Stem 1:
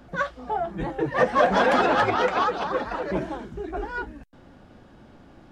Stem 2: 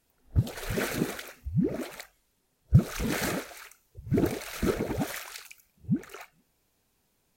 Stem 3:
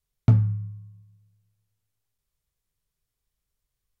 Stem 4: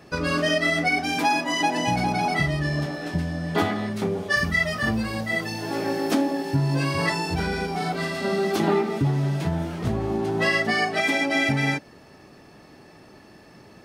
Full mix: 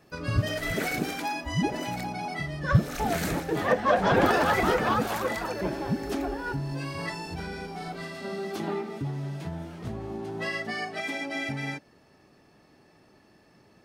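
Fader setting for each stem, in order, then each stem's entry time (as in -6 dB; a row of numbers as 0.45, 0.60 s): -3.5, -1.5, -14.5, -10.0 dB; 2.50, 0.00, 0.00, 0.00 s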